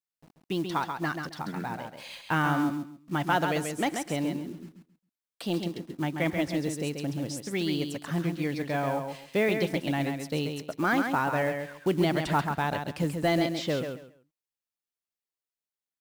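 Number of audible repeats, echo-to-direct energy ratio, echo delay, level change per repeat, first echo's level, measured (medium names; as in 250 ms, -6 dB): 3, -6.0 dB, 135 ms, -13.0 dB, -6.0 dB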